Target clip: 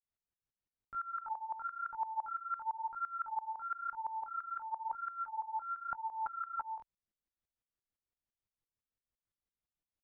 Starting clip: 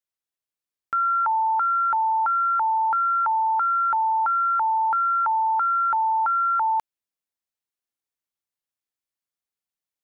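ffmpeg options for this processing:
-af "alimiter=level_in=2.11:limit=0.0631:level=0:latency=1,volume=0.473,aemphasis=mode=reproduction:type=riaa,flanger=delay=18:depth=7.7:speed=0.97,aeval=exprs='val(0)*pow(10,-18*if(lt(mod(-5.9*n/s,1),2*abs(-5.9)/1000),1-mod(-5.9*n/s,1)/(2*abs(-5.9)/1000),(mod(-5.9*n/s,1)-2*abs(-5.9)/1000)/(1-2*abs(-5.9)/1000))/20)':c=same,volume=1.41"

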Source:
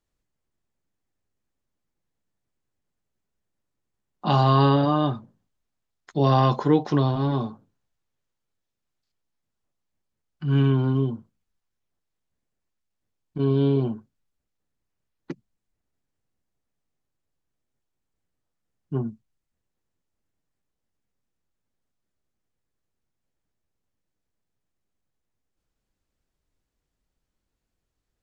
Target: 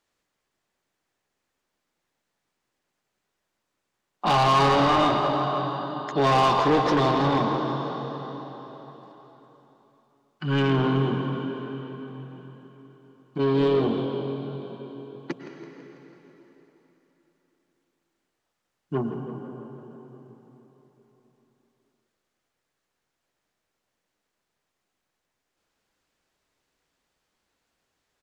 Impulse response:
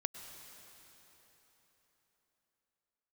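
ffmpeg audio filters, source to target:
-filter_complex "[1:a]atrim=start_sample=2205[s0];[0:a][s0]afir=irnorm=-1:irlink=0,asplit=2[s1][s2];[s2]highpass=f=720:p=1,volume=15.8,asoftclip=type=tanh:threshold=0.501[s3];[s1][s3]amix=inputs=2:normalize=0,lowpass=f=4700:p=1,volume=0.501,asplit=7[s4][s5][s6][s7][s8][s9][s10];[s5]adelay=165,afreqshift=44,volume=0.211[s11];[s6]adelay=330,afreqshift=88,volume=0.119[s12];[s7]adelay=495,afreqshift=132,volume=0.0661[s13];[s8]adelay=660,afreqshift=176,volume=0.0372[s14];[s9]adelay=825,afreqshift=220,volume=0.0209[s15];[s10]adelay=990,afreqshift=264,volume=0.0116[s16];[s4][s11][s12][s13][s14][s15][s16]amix=inputs=7:normalize=0,volume=0.501"

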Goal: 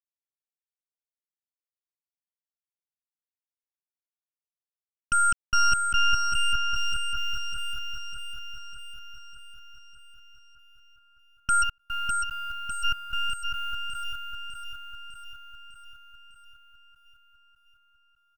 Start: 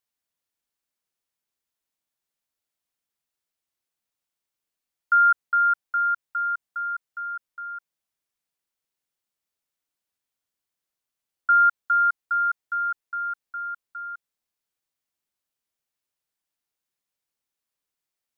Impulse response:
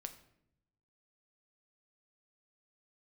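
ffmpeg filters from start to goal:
-filter_complex "[0:a]asplit=3[s0][s1][s2];[s0]afade=t=out:st=11.62:d=0.02[s3];[s1]equalizer=f=1400:w=0.42:g=-11,afade=t=in:st=11.62:d=0.02,afade=t=out:st=12.83:d=0.02[s4];[s2]afade=t=in:st=12.83:d=0.02[s5];[s3][s4][s5]amix=inputs=3:normalize=0,aresample=22050,aresample=44100,aeval=exprs='0.224*(cos(1*acos(clip(val(0)/0.224,-1,1)))-cos(1*PI/2))+0.00501*(cos(5*acos(clip(val(0)/0.224,-1,1)))-cos(5*PI/2))+0.1*(cos(6*acos(clip(val(0)/0.224,-1,1)))-cos(6*PI/2))':c=same,acrusher=bits=7:mix=0:aa=0.000001,alimiter=limit=0.299:level=0:latency=1:release=75,aecho=1:1:602|1204|1806|2408|3010|3612|4214|4816:0.531|0.308|0.179|0.104|0.0601|0.0348|0.0202|0.0117,volume=0.668"

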